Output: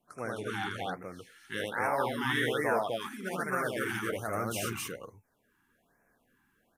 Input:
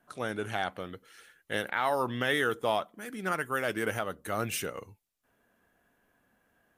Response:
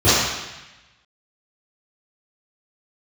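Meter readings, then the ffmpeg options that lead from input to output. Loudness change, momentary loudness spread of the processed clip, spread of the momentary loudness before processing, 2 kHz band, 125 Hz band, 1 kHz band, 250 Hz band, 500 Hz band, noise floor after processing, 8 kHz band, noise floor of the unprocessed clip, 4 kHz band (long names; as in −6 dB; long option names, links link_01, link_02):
−1.0 dB, 12 LU, 12 LU, −1.0 dB, +0.5 dB, −1.0 dB, +0.5 dB, −1.0 dB, −73 dBFS, 0.0 dB, −74 dBFS, −1.0 dB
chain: -af "aecho=1:1:78.72|259.5:0.891|1,flanger=delay=4.8:depth=3.9:regen=-65:speed=2:shape=triangular,afftfilt=real='re*(1-between(b*sr/1024,520*pow(3800/520,0.5+0.5*sin(2*PI*1.2*pts/sr))/1.41,520*pow(3800/520,0.5+0.5*sin(2*PI*1.2*pts/sr))*1.41))':imag='im*(1-between(b*sr/1024,520*pow(3800/520,0.5+0.5*sin(2*PI*1.2*pts/sr))/1.41,520*pow(3800/520,0.5+0.5*sin(2*PI*1.2*pts/sr))*1.41))':win_size=1024:overlap=0.75"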